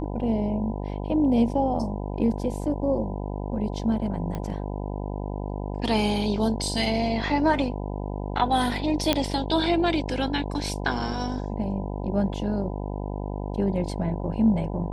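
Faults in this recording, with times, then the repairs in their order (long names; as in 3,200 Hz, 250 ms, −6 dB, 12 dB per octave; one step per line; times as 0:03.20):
mains buzz 50 Hz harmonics 20 −31 dBFS
0:04.35: click −19 dBFS
0:09.13: click −6 dBFS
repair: click removal
hum removal 50 Hz, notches 20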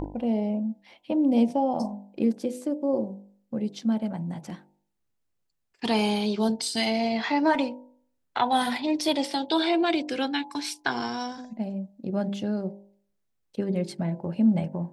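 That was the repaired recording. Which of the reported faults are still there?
none of them is left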